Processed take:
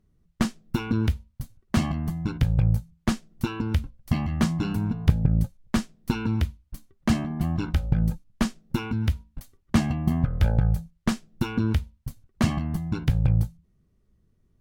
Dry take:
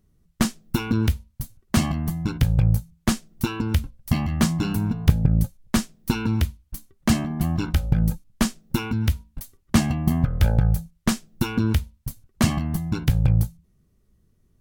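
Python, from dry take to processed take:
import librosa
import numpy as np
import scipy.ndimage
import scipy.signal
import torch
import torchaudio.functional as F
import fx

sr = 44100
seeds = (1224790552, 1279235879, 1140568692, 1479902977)

y = fx.lowpass(x, sr, hz=3700.0, slope=6)
y = y * 10.0 ** (-2.5 / 20.0)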